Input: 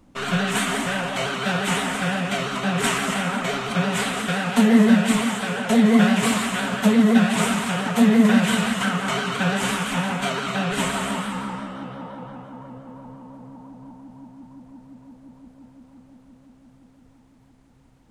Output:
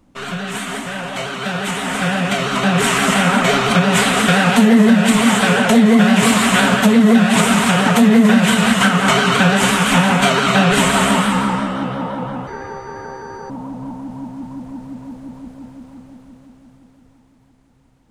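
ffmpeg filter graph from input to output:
ffmpeg -i in.wav -filter_complex "[0:a]asettb=1/sr,asplit=3[link_01][link_02][link_03];[link_01]atrim=end=12.474[link_04];[link_02]atrim=start=12.47:end=13.5,asetpts=PTS-STARTPTS,afade=type=in:duration=0.004:curve=qsin,afade=type=out:start_time=1.026:duration=0.004:curve=qsin,aeval=exprs='val(0)+0.00112*sin(2*PI*5300*n/s)':channel_layout=same,aeval=exprs='val(0)*sin(2*PI*660*n/s)':channel_layout=same[link_05];[link_03]atrim=start=13.496[link_06];[link_04][link_05]acrossfade=duration=0.004:curve1=hsin:curve2=qsin[link_07];[link_07][link_06]acrossfade=duration=0.004:curve1=qsin:curve2=hsin,alimiter=limit=-15dB:level=0:latency=1:release=254,dynaudnorm=framelen=280:gausssize=17:maxgain=14dB" out.wav

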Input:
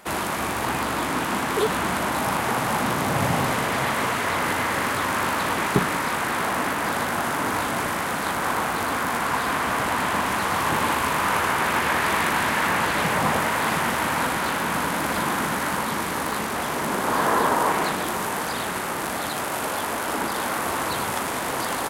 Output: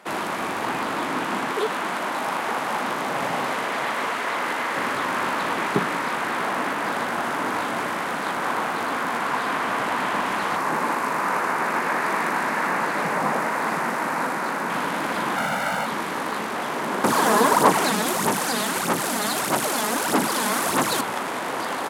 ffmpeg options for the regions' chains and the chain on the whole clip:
ffmpeg -i in.wav -filter_complex "[0:a]asettb=1/sr,asplit=3[link_01][link_02][link_03];[link_01]atrim=end=1.524[link_04];[link_02]atrim=start=1.52:end=4.76,asetpts=PTS-STARTPTS,afade=type=in:duration=0.004:curve=qsin,afade=type=out:start_time=3.236:duration=0.004:curve=qsin,highpass=frequency=310:poles=1,aeval=exprs='sgn(val(0))*max(abs(val(0))-0.00376,0)':channel_layout=same[link_05];[link_03]atrim=start=4.756[link_06];[link_04][link_05]acrossfade=duration=0.004:curve1=hsin:curve2=qsin[link_07];[link_07][link_06]acrossfade=duration=0.004:curve1=qsin:curve2=hsin,asettb=1/sr,asplit=3[link_08][link_09][link_10];[link_08]atrim=end=10.564[link_11];[link_09]atrim=start=10.56:end=14.7,asetpts=PTS-STARTPTS,afade=type=in:duration=0.004:curve=qsin,afade=type=out:start_time=4.136:duration=0.004:curve=qsin,highpass=frequency=130:width=0.5412,highpass=frequency=130:width=1.3066,equalizer=frequency=3200:width_type=o:width=0.66:gain=-9[link_12];[link_10]atrim=start=14.696[link_13];[link_11][link_12]acrossfade=duration=0.004:curve1=hsin:curve2=qsin[link_14];[link_14][link_13]acrossfade=duration=0.004:curve1=qsin:curve2=hsin,asettb=1/sr,asplit=3[link_15][link_16][link_17];[link_15]atrim=end=15.364[link_18];[link_16]atrim=start=15.36:end=15.86,asetpts=PTS-STARTPTS,afade=type=in:duration=0.004:curve=qsin,afade=type=out:start_time=0.496:duration=0.004:curve=qsin,acrusher=bits=4:mode=log:mix=0:aa=0.000001,aecho=1:1:1.4:0.73,atrim=end_sample=22050[link_19];[link_17]atrim=start=15.856[link_20];[link_18][link_19]acrossfade=duration=0.004:curve1=hsin:curve2=qsin[link_21];[link_21][link_20]acrossfade=duration=0.004:curve1=qsin:curve2=hsin,asettb=1/sr,asplit=3[link_22][link_23][link_24];[link_22]atrim=end=17.044[link_25];[link_23]atrim=start=17.04:end=21.01,asetpts=PTS-STARTPTS,afade=type=in:duration=0.004:curve=qsin,afade=type=out:start_time=3.966:duration=0.004:curve=qsin,highpass=120,aphaser=in_gain=1:out_gain=1:delay=4.8:decay=0.6:speed=1.6:type=sinusoidal,bass=frequency=250:gain=9,treble=frequency=4000:gain=12[link_26];[link_24]atrim=start=21.006[link_27];[link_25][link_26]acrossfade=duration=0.004:curve1=hsin:curve2=qsin[link_28];[link_28][link_27]acrossfade=duration=0.004:curve1=qsin:curve2=hsin,highpass=190,highshelf=frequency=7000:gain=-11.5" out.wav

